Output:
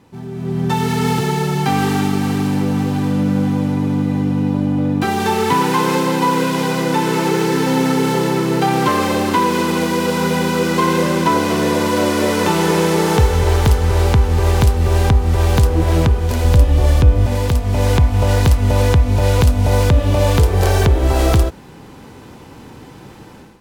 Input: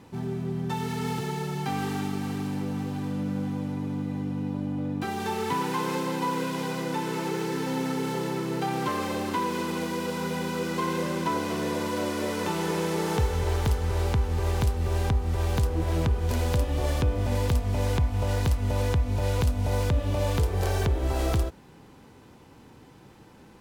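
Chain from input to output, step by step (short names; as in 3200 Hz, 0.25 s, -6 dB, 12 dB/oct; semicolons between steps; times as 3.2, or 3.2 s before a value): 16.44–17.26 low shelf 120 Hz +9.5 dB; AGC gain up to 13.5 dB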